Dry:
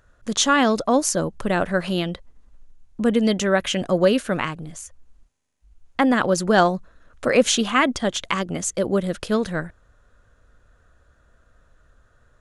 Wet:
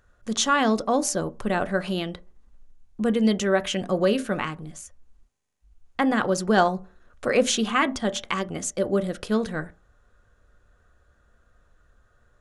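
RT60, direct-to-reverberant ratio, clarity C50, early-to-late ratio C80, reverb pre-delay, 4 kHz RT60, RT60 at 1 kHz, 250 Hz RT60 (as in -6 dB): 0.45 s, 9.5 dB, 23.0 dB, 27.5 dB, 3 ms, 0.20 s, 0.40 s, 0.40 s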